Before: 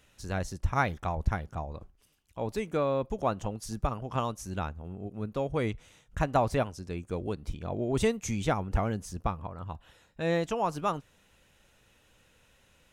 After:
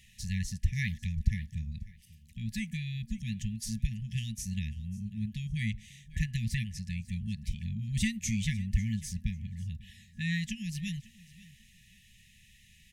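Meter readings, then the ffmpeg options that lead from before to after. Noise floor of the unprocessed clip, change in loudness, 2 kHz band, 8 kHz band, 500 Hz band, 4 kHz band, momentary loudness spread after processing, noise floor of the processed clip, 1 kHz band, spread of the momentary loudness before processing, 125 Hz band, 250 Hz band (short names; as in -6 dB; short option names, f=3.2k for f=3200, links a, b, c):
-65 dBFS, -3.0 dB, -1.5 dB, +2.5 dB, under -40 dB, +2.0 dB, 11 LU, -60 dBFS, under -40 dB, 12 LU, +2.0 dB, -1.0 dB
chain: -filter_complex "[0:a]afftfilt=real='re*(1-between(b*sr/4096,230,1700))':imag='im*(1-between(b*sr/4096,230,1700))':win_size=4096:overlap=0.75,asplit=2[a][b];[b]acompressor=threshold=-42dB:ratio=8,volume=-2dB[c];[a][c]amix=inputs=2:normalize=0,aecho=1:1:545|1090:0.1|0.021"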